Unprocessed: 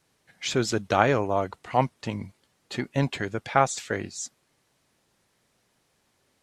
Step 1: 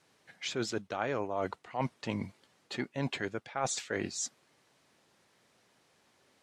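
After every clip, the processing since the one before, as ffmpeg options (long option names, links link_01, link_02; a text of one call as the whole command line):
ffmpeg -i in.wav -af "highpass=frequency=200:poles=1,highshelf=frequency=10000:gain=-12,areverse,acompressor=threshold=-33dB:ratio=8,areverse,volume=3dB" out.wav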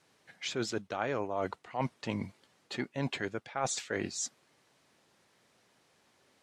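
ffmpeg -i in.wav -af anull out.wav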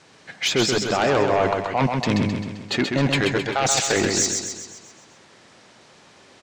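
ffmpeg -i in.wav -filter_complex "[0:a]lowpass=frequency=8100:width=0.5412,lowpass=frequency=8100:width=1.3066,asplit=2[link_01][link_02];[link_02]aeval=exprs='0.133*sin(PI/2*3.16*val(0)/0.133)':channel_layout=same,volume=-3.5dB[link_03];[link_01][link_03]amix=inputs=2:normalize=0,aecho=1:1:131|262|393|524|655|786|917:0.596|0.31|0.161|0.0838|0.0436|0.0226|0.0118,volume=3.5dB" out.wav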